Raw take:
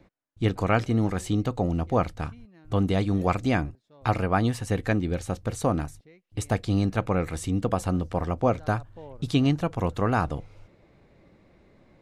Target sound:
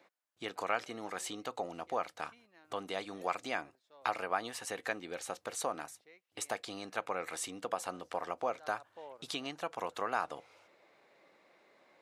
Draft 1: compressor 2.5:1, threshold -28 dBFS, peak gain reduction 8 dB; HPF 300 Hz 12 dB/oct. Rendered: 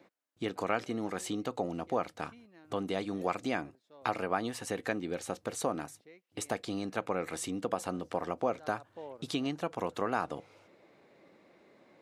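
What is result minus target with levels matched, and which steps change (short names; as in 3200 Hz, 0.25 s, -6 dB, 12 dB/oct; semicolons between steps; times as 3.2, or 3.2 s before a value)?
250 Hz band +7.5 dB
change: HPF 640 Hz 12 dB/oct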